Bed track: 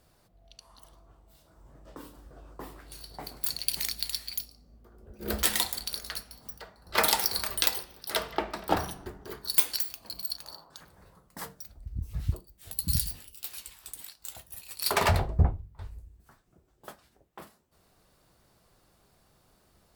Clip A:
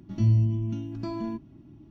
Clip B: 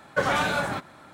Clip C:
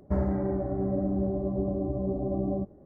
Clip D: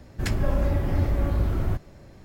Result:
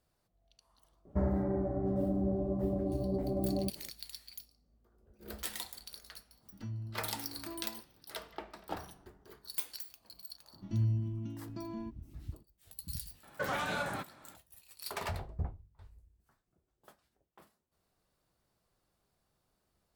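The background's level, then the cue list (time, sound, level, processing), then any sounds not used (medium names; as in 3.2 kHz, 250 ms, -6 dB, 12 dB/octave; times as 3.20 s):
bed track -14 dB
1.05 s: add C -4 dB
6.43 s: add A -11 dB + spectral noise reduction 9 dB
10.53 s: add A -9.5 dB
13.23 s: add B -8.5 dB + peak limiter -17 dBFS
not used: D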